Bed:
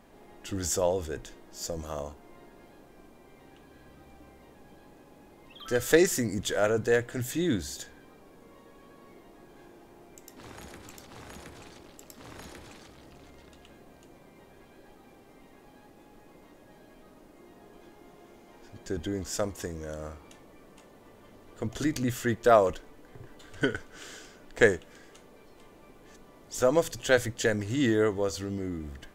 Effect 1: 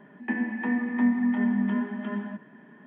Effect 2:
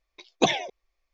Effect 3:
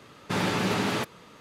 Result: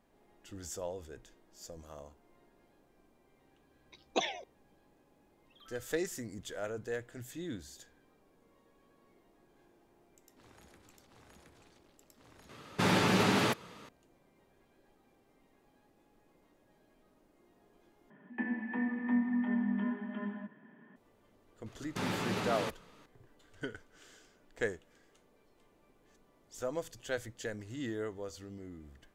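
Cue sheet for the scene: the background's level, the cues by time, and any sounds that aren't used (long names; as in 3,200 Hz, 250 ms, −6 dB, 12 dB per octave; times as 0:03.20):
bed −13.5 dB
0:03.74: mix in 2 −10 dB + high-pass filter 300 Hz
0:12.49: overwrite with 3 −1 dB
0:18.10: overwrite with 1 −7.5 dB
0:21.66: mix in 3 −9 dB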